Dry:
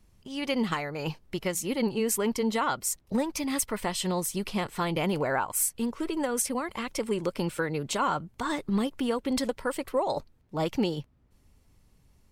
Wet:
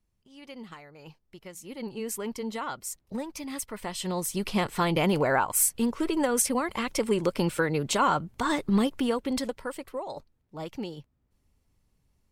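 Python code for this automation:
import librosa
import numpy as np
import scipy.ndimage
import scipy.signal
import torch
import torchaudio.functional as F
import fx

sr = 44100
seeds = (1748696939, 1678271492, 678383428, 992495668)

y = fx.gain(x, sr, db=fx.line((1.4, -15.5), (2.03, -6.5), (3.72, -6.5), (4.58, 3.5), (8.89, 3.5), (10.06, -8.5)))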